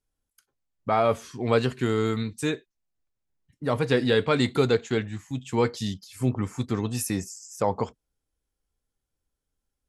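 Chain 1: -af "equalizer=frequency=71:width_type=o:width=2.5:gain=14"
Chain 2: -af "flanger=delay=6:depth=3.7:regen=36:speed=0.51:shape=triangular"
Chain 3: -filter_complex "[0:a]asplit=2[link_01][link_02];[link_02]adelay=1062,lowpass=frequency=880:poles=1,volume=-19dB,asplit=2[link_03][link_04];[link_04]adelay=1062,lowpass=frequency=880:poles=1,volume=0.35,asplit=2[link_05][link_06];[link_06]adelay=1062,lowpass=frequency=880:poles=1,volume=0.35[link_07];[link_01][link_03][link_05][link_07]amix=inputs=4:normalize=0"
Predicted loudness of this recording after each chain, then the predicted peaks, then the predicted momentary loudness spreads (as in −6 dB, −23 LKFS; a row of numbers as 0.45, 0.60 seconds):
−22.0, −30.0, −26.5 LKFS; −6.5, −11.5, −9.0 dBFS; 8, 11, 13 LU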